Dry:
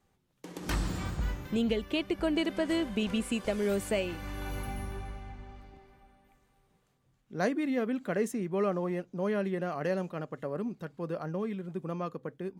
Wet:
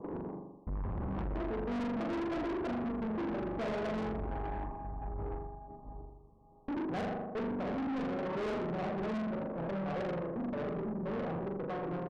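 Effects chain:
slices reordered back to front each 174 ms, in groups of 4
Chebyshev low-pass with heavy ripple 1,100 Hz, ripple 3 dB
mains-hum notches 60/120/180/240/300/360 Hz
on a send: flutter between parallel walls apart 7.4 metres, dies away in 1 s
on the sum: wrong playback speed 24 fps film run at 25 fps
in parallel at −3.5 dB: sine wavefolder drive 8 dB, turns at −14.5 dBFS
on the sum: pitch-shifted copies added −4 semitones −10 dB
tube saturation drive 27 dB, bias 0.25
level −6.5 dB

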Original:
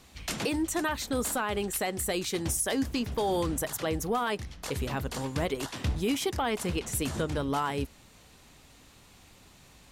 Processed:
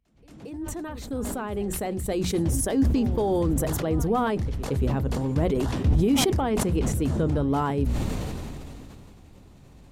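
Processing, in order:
fade in at the beginning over 2.41 s
tilt shelving filter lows +9 dB, about 790 Hz
mains-hum notches 60/120/180/240 Hz
echo ahead of the sound 227 ms −18.5 dB
level that may fall only so fast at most 20 dB per second

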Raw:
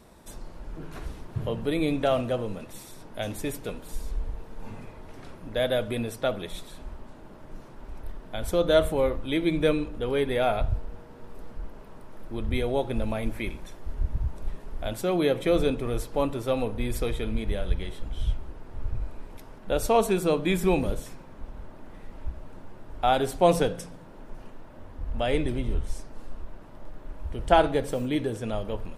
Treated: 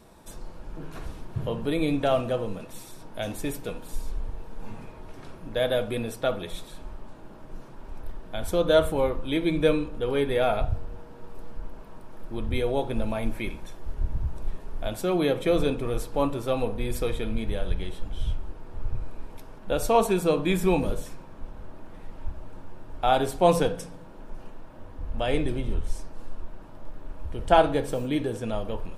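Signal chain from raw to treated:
notch filter 2,000 Hz, Q 19
on a send: parametric band 960 Hz +11.5 dB 0.77 octaves + convolution reverb RT60 0.40 s, pre-delay 6 ms, DRR 8.5 dB

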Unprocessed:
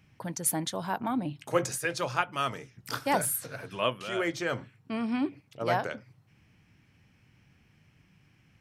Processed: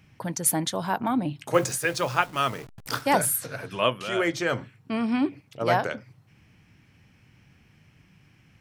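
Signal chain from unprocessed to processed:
0:01.54–0:03.02: hold until the input has moved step −45 dBFS
level +5 dB

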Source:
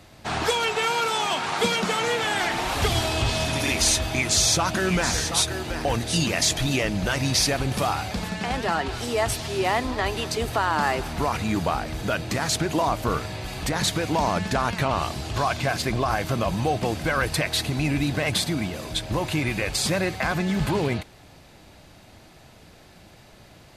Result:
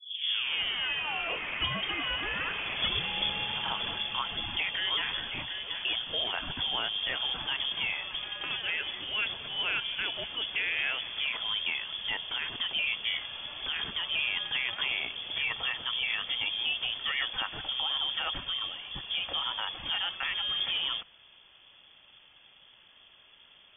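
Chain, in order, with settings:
turntable start at the beginning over 1.50 s
voice inversion scrambler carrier 3,400 Hz
level −8 dB

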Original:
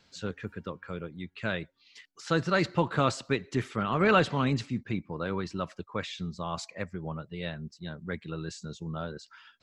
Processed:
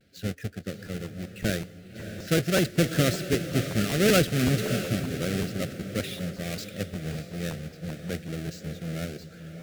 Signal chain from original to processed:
each half-wave held at its own peak
high-pass filter 46 Hz
pitch vibrato 0.37 Hz 25 cents
Butterworth band-reject 970 Hz, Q 1.2
feedback delay with all-pass diffusion 621 ms, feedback 40%, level −9 dB
regular buffer underruns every 0.19 s, samples 512, repeat, from 0:00.85
one half of a high-frequency compander decoder only
level −1 dB

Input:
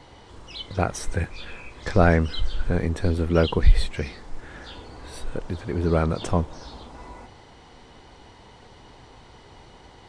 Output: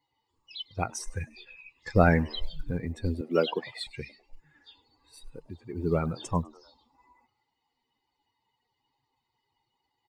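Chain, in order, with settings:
spectral dynamics exaggerated over time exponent 2
0:03.21–0:03.87: Bessel high-pass filter 290 Hz, order 8
floating-point word with a short mantissa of 6 bits
echo with shifted repeats 101 ms, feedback 48%, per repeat +140 Hz, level −23.5 dB

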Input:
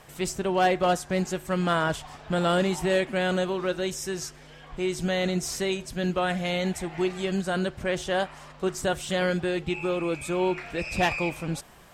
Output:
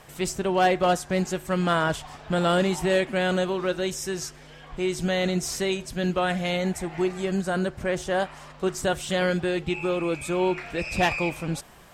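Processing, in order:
0:06.56–0:08.22: dynamic equaliser 3,300 Hz, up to −6 dB, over −47 dBFS, Q 1.4
level +1.5 dB

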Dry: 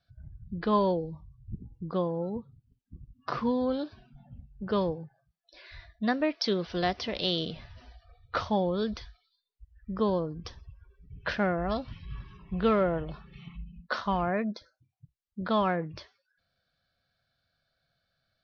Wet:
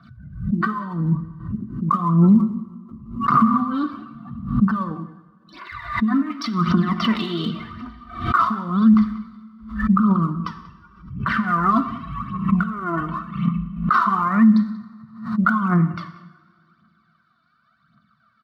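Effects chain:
compressor whose output falls as the input rises −31 dBFS, ratio −0.5
pair of resonant band-passes 510 Hz, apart 2.4 octaves
phase shifter 0.89 Hz, delay 3.1 ms, feedback 69%
notch comb filter 830 Hz
slap from a distant wall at 32 metres, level −18 dB
coupled-rooms reverb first 0.88 s, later 2.6 s, DRR 9.5 dB
boost into a limiter +29.5 dB
background raised ahead of every attack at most 100 dB per second
level −6 dB

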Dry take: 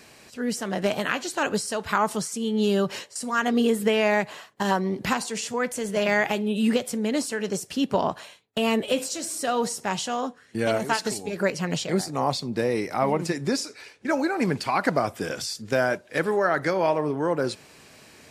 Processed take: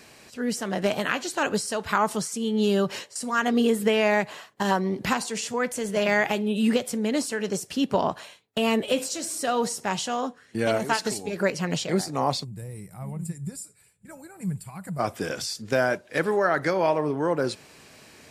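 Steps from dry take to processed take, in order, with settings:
gain on a spectral selection 0:12.44–0:15.00, 210–7,000 Hz −21 dB

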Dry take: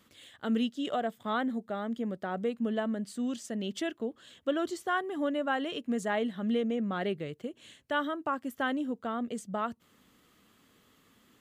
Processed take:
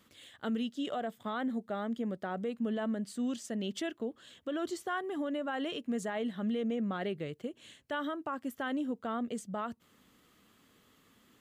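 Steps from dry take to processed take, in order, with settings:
brickwall limiter −26 dBFS, peak gain reduction 8 dB
level −1 dB

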